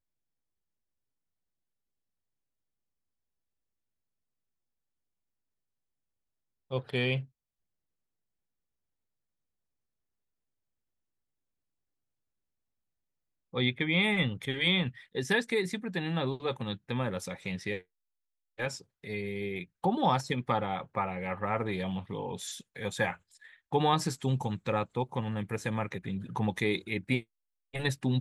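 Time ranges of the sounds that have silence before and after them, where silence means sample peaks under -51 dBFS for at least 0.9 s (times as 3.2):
6.7–7.26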